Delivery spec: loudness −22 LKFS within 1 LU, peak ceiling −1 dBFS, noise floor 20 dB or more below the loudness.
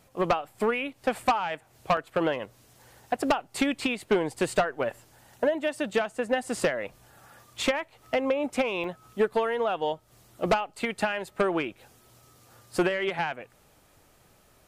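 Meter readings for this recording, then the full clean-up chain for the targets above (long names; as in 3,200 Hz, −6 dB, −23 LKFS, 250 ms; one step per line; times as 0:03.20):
number of dropouts 2; longest dropout 1.4 ms; integrated loudness −28.5 LKFS; sample peak −16.5 dBFS; target loudness −22.0 LKFS
→ repair the gap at 0:01.97/0:08.84, 1.4 ms
level +6.5 dB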